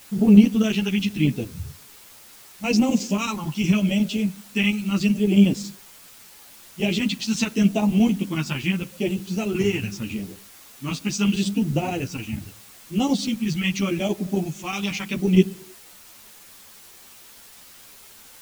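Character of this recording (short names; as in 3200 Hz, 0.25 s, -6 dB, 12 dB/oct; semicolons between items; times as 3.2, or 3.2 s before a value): phasing stages 2, 0.79 Hz, lowest notch 520–1400 Hz; chopped level 11 Hz, depth 60%, duty 80%; a quantiser's noise floor 8-bit, dither triangular; a shimmering, thickened sound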